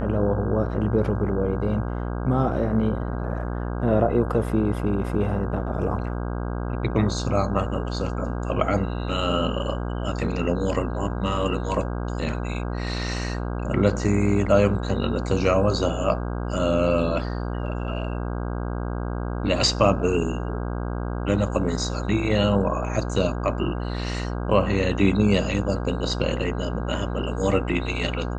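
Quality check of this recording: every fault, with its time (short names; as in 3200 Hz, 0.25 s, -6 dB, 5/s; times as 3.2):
buzz 60 Hz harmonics 27 -28 dBFS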